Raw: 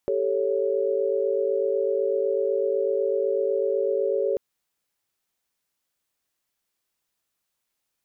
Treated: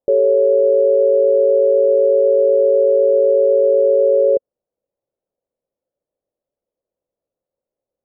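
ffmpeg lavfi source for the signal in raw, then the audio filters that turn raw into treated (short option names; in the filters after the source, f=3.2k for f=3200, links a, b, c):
-f lavfi -i "aevalsrc='0.0531*(sin(2*PI*392*t)+sin(2*PI*440*t)+sin(2*PI*554.37*t))':d=4.29:s=44100"
-af "lowpass=f=540:t=q:w=5.5"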